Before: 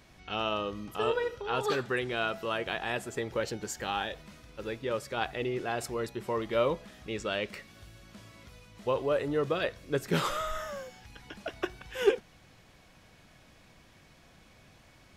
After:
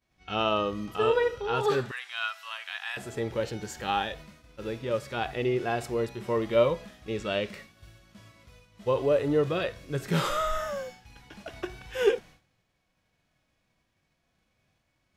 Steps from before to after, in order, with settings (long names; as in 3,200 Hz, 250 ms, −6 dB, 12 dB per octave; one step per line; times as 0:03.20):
downward expander −45 dBFS
0:01.91–0:02.97: Bessel high-pass filter 1,600 Hz, order 6
harmonic and percussive parts rebalanced percussive −11 dB
level +6.5 dB